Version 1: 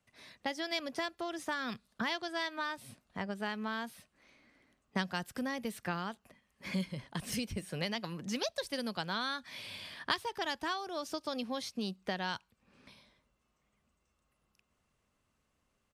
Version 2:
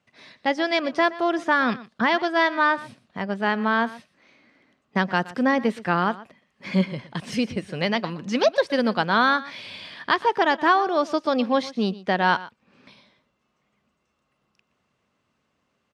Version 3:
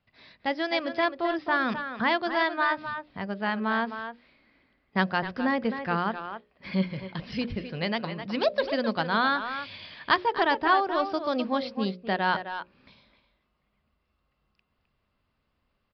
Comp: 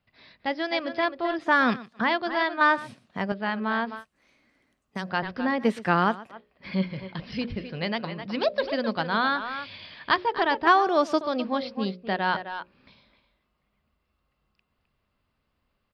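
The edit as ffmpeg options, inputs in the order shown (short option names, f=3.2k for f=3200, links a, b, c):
-filter_complex "[1:a]asplit=4[a][b][c][d];[2:a]asplit=6[e][f][g][h][i][j];[e]atrim=end=1.55[k];[a]atrim=start=1.39:end=2.09[l];[f]atrim=start=1.93:end=2.612[m];[b]atrim=start=2.608:end=3.322[n];[g]atrim=start=3.318:end=4.05[o];[0:a]atrim=start=3.95:end=5.1[p];[h]atrim=start=5:end=5.67[q];[c]atrim=start=5.57:end=6.39[r];[i]atrim=start=6.29:end=10.672[s];[d]atrim=start=10.668:end=11.212[t];[j]atrim=start=11.208[u];[k][l]acrossfade=d=0.16:c1=tri:c2=tri[v];[v][m]acrossfade=d=0.16:c1=tri:c2=tri[w];[w][n]acrossfade=d=0.004:c1=hsin:c2=hsin[x];[x][o]acrossfade=d=0.004:c1=hsin:c2=hsin[y];[y][p]acrossfade=d=0.1:c1=tri:c2=tri[z];[z][q]acrossfade=d=0.1:c1=tri:c2=tri[aa];[aa][r]acrossfade=d=0.1:c1=tri:c2=tri[ab];[ab][s]acrossfade=d=0.1:c1=tri:c2=tri[ac];[ac][t]acrossfade=d=0.004:c1=hsin:c2=hsin[ad];[ad][u]acrossfade=d=0.004:c1=hsin:c2=hsin"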